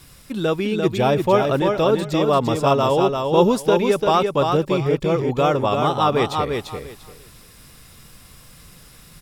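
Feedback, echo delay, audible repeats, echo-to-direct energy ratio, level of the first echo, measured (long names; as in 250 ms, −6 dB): 20%, 344 ms, 3, −4.5 dB, −4.5 dB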